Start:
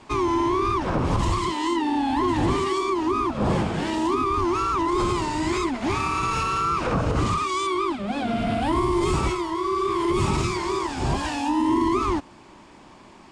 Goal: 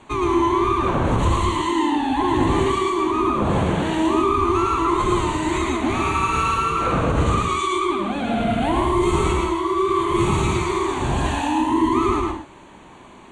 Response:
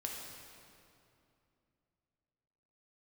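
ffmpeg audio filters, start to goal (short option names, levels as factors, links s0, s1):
-filter_complex "[0:a]acontrast=32,asuperstop=centerf=5100:order=4:qfactor=3,asplit=2[s0][s1];[1:a]atrim=start_sample=2205,atrim=end_sample=6615,adelay=113[s2];[s1][s2]afir=irnorm=-1:irlink=0,volume=1.12[s3];[s0][s3]amix=inputs=2:normalize=0,volume=0.596"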